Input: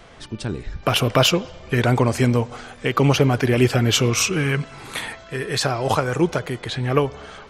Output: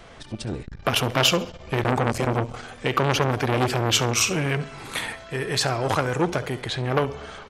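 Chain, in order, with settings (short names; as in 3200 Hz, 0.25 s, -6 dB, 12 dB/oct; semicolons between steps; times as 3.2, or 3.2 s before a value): 1.83–2.56 low shelf 73 Hz +11 dB; feedback echo 68 ms, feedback 28%, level -15.5 dB; core saturation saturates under 1600 Hz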